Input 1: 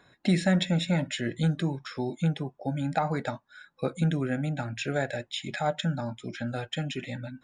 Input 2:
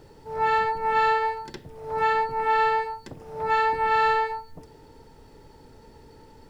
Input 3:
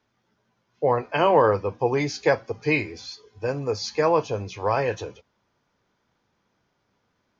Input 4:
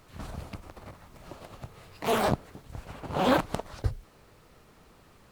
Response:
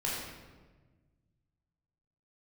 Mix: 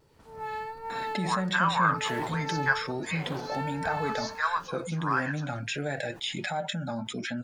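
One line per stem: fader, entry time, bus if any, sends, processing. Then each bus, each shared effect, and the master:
−6.0 dB, 0.90 s, no send, flanger 0.32 Hz, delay 4.3 ms, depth 2.8 ms, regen +46%; envelope flattener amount 70%
−16.0 dB, 0.00 s, send −13 dB, bass and treble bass +5 dB, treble +5 dB; noise that follows the level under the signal 33 dB
+1.0 dB, 0.40 s, no send, high-pass filter 1,200 Hz 24 dB per octave; high shelf with overshoot 1,900 Hz −7.5 dB, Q 3
−18.0 dB, 0.00 s, send −7 dB, no processing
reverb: on, RT60 1.3 s, pre-delay 14 ms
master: low-shelf EQ 94 Hz −9 dB; pitch vibrato 1.4 Hz 34 cents

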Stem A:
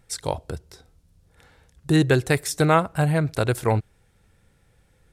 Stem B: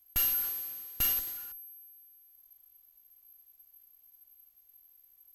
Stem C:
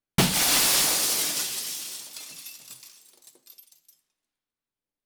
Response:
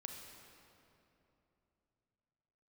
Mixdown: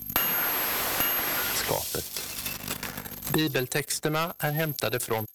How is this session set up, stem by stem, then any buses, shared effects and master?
−12.5 dB, 1.45 s, no send, gate on every frequency bin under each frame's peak −30 dB strong
−1.5 dB, 0.00 s, no send, no processing
−13.5 dB, 0.00 s, no send, downward compressor, threshold −26 dBFS, peak gain reduction 10 dB; mains hum 50 Hz, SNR 12 dB; wave folding −28.5 dBFS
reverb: not used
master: high-pass filter 320 Hz 6 dB per octave; leveller curve on the samples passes 3; multiband upward and downward compressor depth 100%

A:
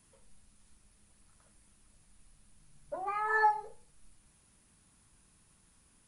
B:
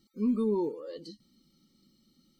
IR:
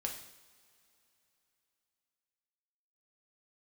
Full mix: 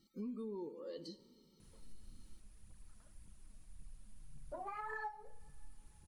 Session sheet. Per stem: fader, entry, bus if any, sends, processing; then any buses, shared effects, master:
−6.0 dB, 1.60 s, send −16 dB, low-shelf EQ 200 Hz +11 dB; phase shifter 1.8 Hz, delay 4.8 ms, feedback 48%
−6.0 dB, 0.00 s, send −8 dB, no processing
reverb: on, pre-delay 3 ms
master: downward compressor 6 to 1, threshold −42 dBFS, peak gain reduction 18 dB

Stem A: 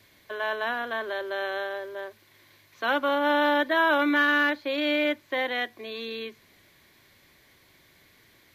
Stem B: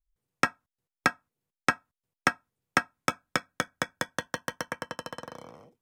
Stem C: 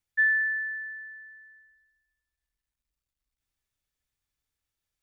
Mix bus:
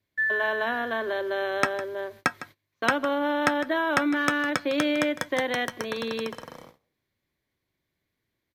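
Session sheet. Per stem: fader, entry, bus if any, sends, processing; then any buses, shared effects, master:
0.0 dB, 0.00 s, no send, echo send −22 dB, low-shelf EQ 490 Hz +8.5 dB; downward compressor, threshold −22 dBFS, peak gain reduction 7.5 dB
−0.5 dB, 1.20 s, no send, echo send −15 dB, no processing
−3.0 dB, 0.00 s, no send, no echo send, no processing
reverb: not used
echo: single-tap delay 156 ms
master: noise gate −45 dBFS, range −25 dB

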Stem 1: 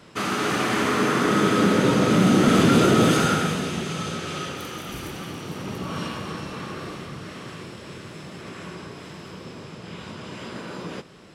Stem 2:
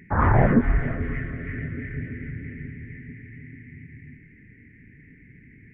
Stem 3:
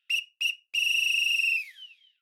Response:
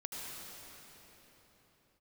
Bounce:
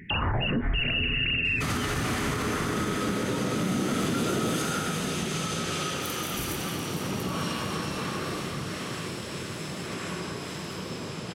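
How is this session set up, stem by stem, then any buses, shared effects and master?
+3.0 dB, 1.45 s, no send, high-shelf EQ 5,900 Hz +9.5 dB; downward compressor 4 to 1, threshold −30 dBFS, peak gain reduction 14 dB
+3.0 dB, 0.00 s, no send, downward compressor, threshold −21 dBFS, peak gain reduction 9 dB
−3.0 dB, 0.00 s, no send, three sine waves on the formant tracks; high-shelf EQ 2,200 Hz +11 dB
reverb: not used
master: brickwall limiter −19 dBFS, peak gain reduction 11 dB

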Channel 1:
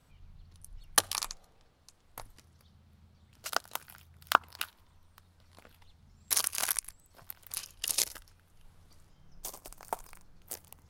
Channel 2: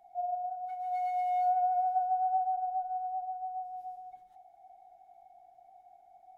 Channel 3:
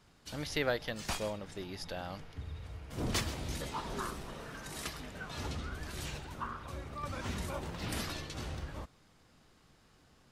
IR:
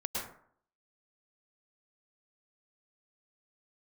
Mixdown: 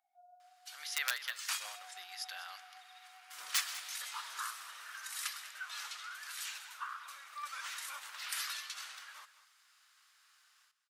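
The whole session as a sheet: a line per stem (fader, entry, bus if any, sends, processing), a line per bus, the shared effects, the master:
muted
−8.0 dB, 0.00 s, muted 0:01.06–0:01.65, no send, no echo send, no processing
−3.0 dB, 0.40 s, no send, echo send −14.5 dB, automatic gain control gain up to 5 dB; high-shelf EQ 9,000 Hz +5.5 dB; wrap-around overflow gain 16 dB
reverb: not used
echo: single-tap delay 197 ms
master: Chebyshev high-pass filter 1,300 Hz, order 3

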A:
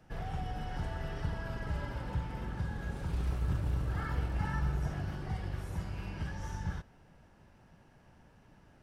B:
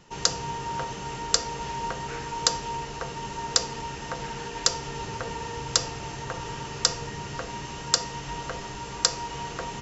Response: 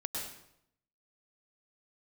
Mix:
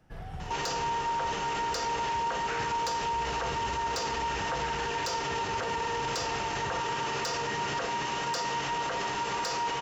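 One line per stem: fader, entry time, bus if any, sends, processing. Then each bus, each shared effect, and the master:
−2.5 dB, 0.00 s, no send, no processing
−0.5 dB, 0.40 s, no send, mid-hump overdrive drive 23 dB, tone 2,500 Hz, clips at −1.5 dBFS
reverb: not used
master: brickwall limiter −24 dBFS, peak gain reduction 17 dB

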